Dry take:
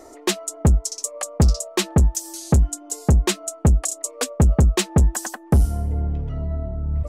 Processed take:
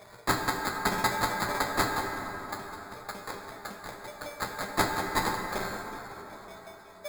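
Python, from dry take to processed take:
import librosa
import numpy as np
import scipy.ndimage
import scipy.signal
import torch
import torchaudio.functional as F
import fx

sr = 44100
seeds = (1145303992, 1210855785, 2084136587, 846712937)

y = fx.median_filter(x, sr, points=25, at=(1.99, 4.38))
y = fx.high_shelf(y, sr, hz=6400.0, db=11.0)
y = fx.hum_notches(y, sr, base_hz=50, count=8)
y = fx.comb_fb(y, sr, f0_hz=200.0, decay_s=0.16, harmonics='all', damping=0.0, mix_pct=100)
y = fx.filter_lfo_highpass(y, sr, shape='saw_up', hz=5.4, low_hz=520.0, high_hz=1900.0, q=1.6)
y = fx.sample_hold(y, sr, seeds[0], rate_hz=2900.0, jitter_pct=0)
y = fx.echo_thinned(y, sr, ms=233, feedback_pct=82, hz=420.0, wet_db=-24)
y = fx.rev_plate(y, sr, seeds[1], rt60_s=4.0, hf_ratio=0.45, predelay_ms=0, drr_db=2.5)
y = F.gain(torch.from_numpy(y), 4.0).numpy()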